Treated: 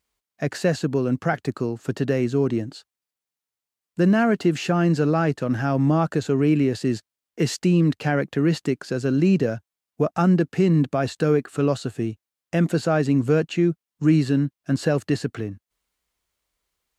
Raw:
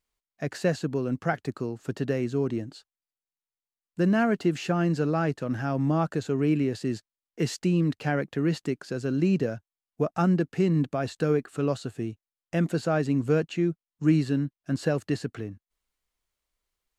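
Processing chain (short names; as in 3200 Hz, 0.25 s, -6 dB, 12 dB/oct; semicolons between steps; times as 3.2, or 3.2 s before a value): HPF 43 Hz; in parallel at 0 dB: limiter -18 dBFS, peak gain reduction 8 dB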